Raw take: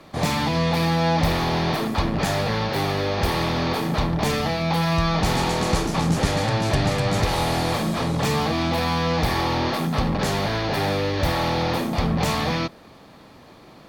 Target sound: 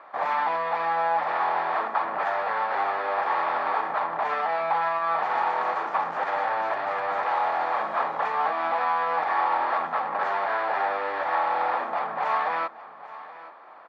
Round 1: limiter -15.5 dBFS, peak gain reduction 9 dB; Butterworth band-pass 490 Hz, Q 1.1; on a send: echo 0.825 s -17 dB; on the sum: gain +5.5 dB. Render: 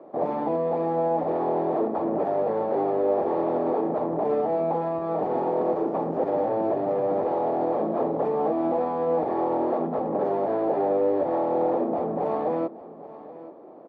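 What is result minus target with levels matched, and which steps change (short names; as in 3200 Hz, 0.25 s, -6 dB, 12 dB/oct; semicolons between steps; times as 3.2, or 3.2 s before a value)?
500 Hz band +8.0 dB
change: Butterworth band-pass 1100 Hz, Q 1.1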